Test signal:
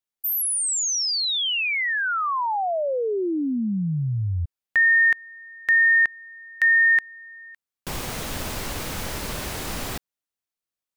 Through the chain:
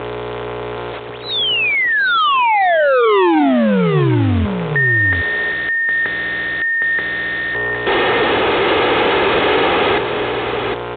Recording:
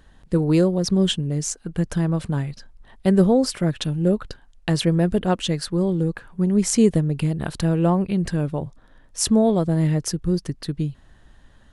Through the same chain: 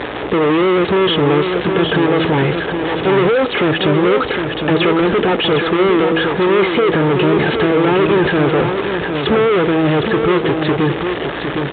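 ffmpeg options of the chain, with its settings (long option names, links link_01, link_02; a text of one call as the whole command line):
ffmpeg -i in.wav -filter_complex "[0:a]aeval=exprs='val(0)+0.00398*(sin(2*PI*60*n/s)+sin(2*PI*2*60*n/s)/2+sin(2*PI*3*60*n/s)/3+sin(2*PI*4*60*n/s)/4+sin(2*PI*5*60*n/s)/5)':channel_layout=same,aecho=1:1:2.4:0.47,aresample=11025,acrusher=bits=7:mix=0:aa=0.000001,aresample=44100,asplit=2[link_01][link_02];[link_02]highpass=frequency=720:poles=1,volume=38dB,asoftclip=type=tanh:threshold=-6dB[link_03];[link_01][link_03]amix=inputs=2:normalize=0,lowpass=frequency=1700:poles=1,volume=-6dB,asplit=2[link_04][link_05];[link_05]asoftclip=type=tanh:threshold=-22dB,volume=-12dB[link_06];[link_04][link_06]amix=inputs=2:normalize=0,equalizer=frequency=400:width=1.2:gain=10.5,bandreject=frequency=162.3:width_type=h:width=4,bandreject=frequency=324.6:width_type=h:width=4,bandreject=frequency=486.9:width_type=h:width=4,bandreject=frequency=649.2:width_type=h:width=4,bandreject=frequency=811.5:width_type=h:width=4,asoftclip=type=hard:threshold=-9dB,highpass=58,highshelf=frequency=2900:gain=6,aecho=1:1:761:0.501,volume=-3dB" -ar 8000 -c:a pcm_mulaw out.wav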